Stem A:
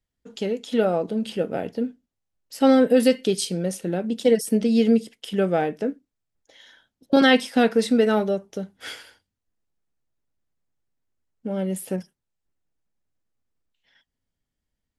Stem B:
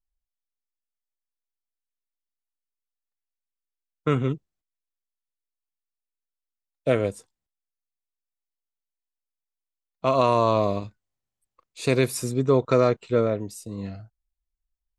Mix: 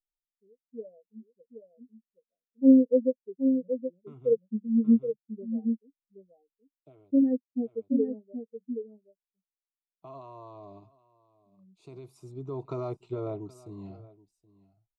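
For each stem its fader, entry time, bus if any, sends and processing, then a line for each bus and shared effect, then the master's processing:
−0.5 dB, 0.00 s, no send, echo send −7.5 dB, low-pass filter 1,100 Hz 6 dB per octave; every bin expanded away from the loudest bin 4 to 1
0:06.54 −4.5 dB → 0:07.06 −15 dB → 0:12.15 −15 dB → 0:12.75 −2.5 dB, 0.00 s, no send, echo send −20.5 dB, brickwall limiter −15 dBFS, peak gain reduction 7.5 dB; phaser with its sweep stopped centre 340 Hz, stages 8; automatic ducking −16 dB, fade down 0.85 s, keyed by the first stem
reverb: not used
echo: single-tap delay 774 ms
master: low-pass filter 1,100 Hz 6 dB per octave; low-shelf EQ 72 Hz −10 dB

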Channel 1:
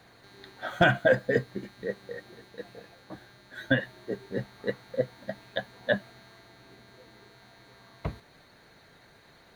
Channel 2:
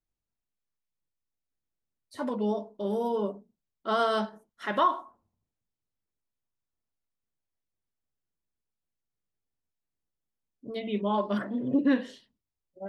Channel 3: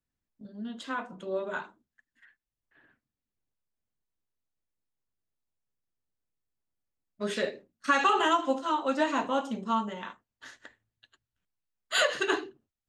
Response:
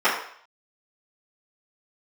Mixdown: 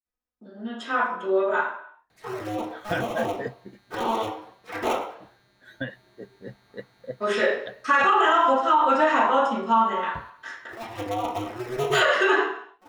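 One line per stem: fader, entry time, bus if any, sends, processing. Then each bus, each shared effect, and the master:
−8.0 dB, 2.10 s, no send, no processing
−5.5 dB, 0.05 s, send −12.5 dB, sub-harmonics by changed cycles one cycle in 2, inverted; flanger swept by the level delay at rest 4 ms, full sweep at −25.5 dBFS
−4.5 dB, 0.00 s, send −4.5 dB, noise gate −55 dBFS, range −28 dB; high-pass filter 230 Hz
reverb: on, RT60 0.60 s, pre-delay 3 ms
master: brickwall limiter −10.5 dBFS, peak gain reduction 11 dB

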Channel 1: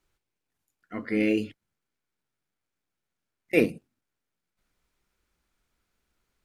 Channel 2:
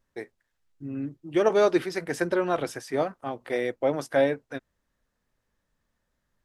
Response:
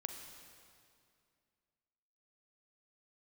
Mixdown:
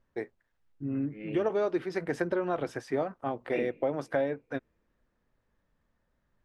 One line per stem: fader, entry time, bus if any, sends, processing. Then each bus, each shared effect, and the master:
−16.0 dB, 0.00 s, send −10 dB, Butterworth low-pass 3,500 Hz; tremolo along a rectified sine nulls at 1.4 Hz
+2.5 dB, 0.00 s, no send, low-pass filter 1,700 Hz 6 dB per octave; downward compressor 4 to 1, threshold −29 dBFS, peak gain reduction 10.5 dB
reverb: on, RT60 2.3 s, pre-delay 36 ms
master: no processing

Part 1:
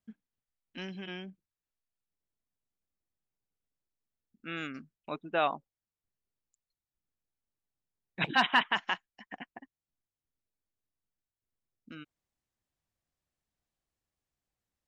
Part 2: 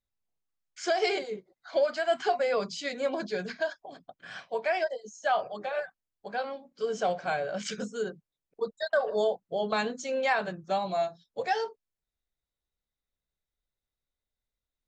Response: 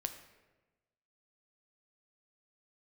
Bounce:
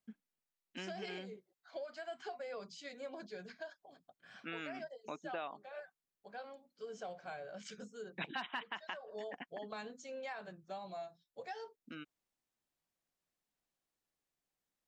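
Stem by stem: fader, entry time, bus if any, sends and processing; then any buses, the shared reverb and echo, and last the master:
−1.0 dB, 0.00 s, no send, high-pass filter 180 Hz
−14.5 dB, 0.00 s, no send, no processing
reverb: not used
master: downward compressor 4 to 1, threshold −41 dBFS, peak gain reduction 17 dB

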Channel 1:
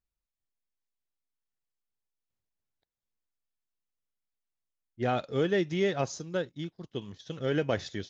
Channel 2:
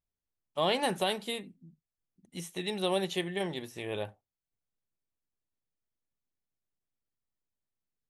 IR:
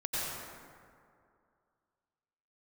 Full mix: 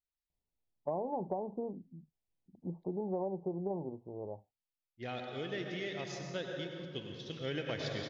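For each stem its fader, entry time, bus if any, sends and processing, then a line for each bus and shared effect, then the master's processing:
0:06.06 −16.5 dB → 0:06.42 −10 dB, 0.00 s, send −5 dB, no processing
+2.5 dB, 0.30 s, no send, Butterworth low-pass 980 Hz 72 dB per octave; automatic ducking −21 dB, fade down 1.30 s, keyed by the first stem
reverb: on, RT60 2.3 s, pre-delay 83 ms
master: flat-topped bell 3,200 Hz +8 dB; downward compressor 6 to 1, threshold −33 dBFS, peak gain reduction 10 dB

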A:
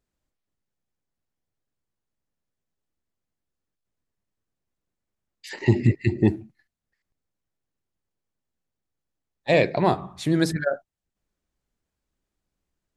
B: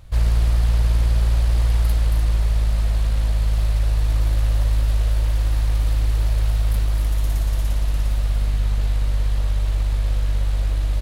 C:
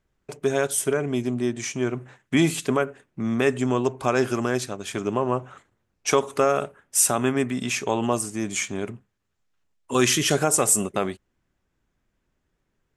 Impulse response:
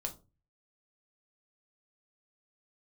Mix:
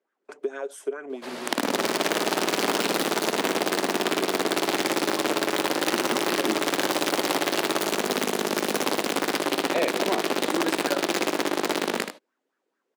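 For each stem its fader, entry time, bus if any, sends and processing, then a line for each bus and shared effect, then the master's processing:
+1.5 dB, 0.25 s, no send, no echo send, no processing
−0.5 dB, 1.10 s, no send, echo send −9.5 dB, automatic gain control gain up to 12.5 dB; wrap-around overflow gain 6.5 dB
−6.5 dB, 0.00 s, no send, no echo send, downward compressor 4 to 1, threshold −29 dBFS, peak gain reduction 13 dB; auto-filter bell 4.5 Hz 420–1,600 Hz +15 dB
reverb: not used
echo: single-tap delay 78 ms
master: Butterworth high-pass 240 Hz 36 dB per octave; high-shelf EQ 7,000 Hz −10.5 dB; downward compressor 2.5 to 1, threshold −24 dBFS, peak gain reduction 9.5 dB

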